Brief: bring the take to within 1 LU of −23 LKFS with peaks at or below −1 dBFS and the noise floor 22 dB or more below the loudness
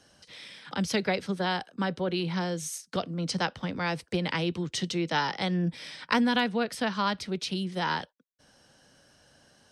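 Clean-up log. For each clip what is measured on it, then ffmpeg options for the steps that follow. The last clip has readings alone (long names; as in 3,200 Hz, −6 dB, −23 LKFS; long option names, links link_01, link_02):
integrated loudness −30.0 LKFS; sample peak −11.0 dBFS; target loudness −23.0 LKFS
→ -af "volume=7dB"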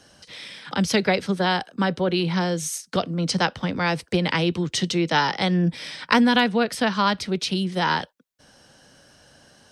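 integrated loudness −23.0 LKFS; sample peak −4.0 dBFS; background noise floor −57 dBFS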